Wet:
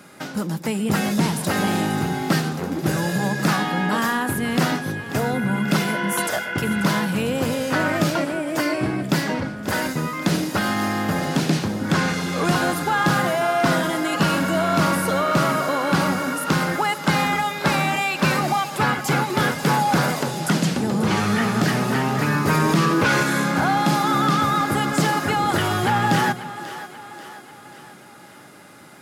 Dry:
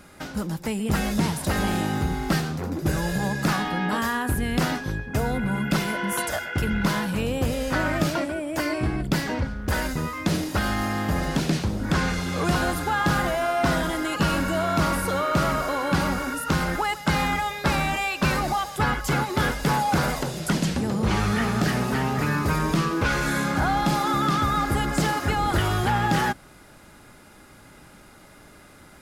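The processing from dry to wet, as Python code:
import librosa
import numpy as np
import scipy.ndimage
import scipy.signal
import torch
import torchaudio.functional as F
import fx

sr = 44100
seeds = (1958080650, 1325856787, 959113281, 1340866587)

y = scipy.signal.sosfilt(scipy.signal.butter(4, 120.0, 'highpass', fs=sr, output='sos'), x)
y = fx.echo_split(y, sr, split_hz=330.0, low_ms=161, high_ms=538, feedback_pct=52, wet_db=-13.5)
y = fx.env_flatten(y, sr, amount_pct=50, at=(22.47, 23.23))
y = y * librosa.db_to_amplitude(3.5)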